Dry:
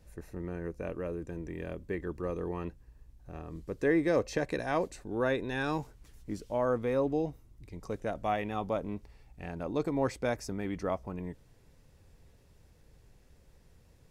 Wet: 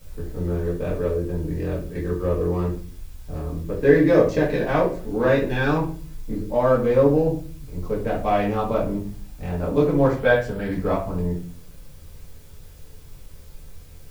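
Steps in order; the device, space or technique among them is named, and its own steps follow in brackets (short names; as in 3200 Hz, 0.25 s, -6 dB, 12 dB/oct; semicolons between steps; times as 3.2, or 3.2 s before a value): Wiener smoothing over 15 samples; worn cassette (LPF 6000 Hz; wow and flutter; level dips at 1.89, 56 ms -12 dB; white noise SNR 29 dB); 10.15–10.71 thirty-one-band EQ 315 Hz -11 dB, 500 Hz +5 dB, 1600 Hz +9 dB, 3150 Hz +8 dB, 6300 Hz -9 dB; shoebox room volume 30 m³, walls mixed, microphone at 1.3 m; gain +2 dB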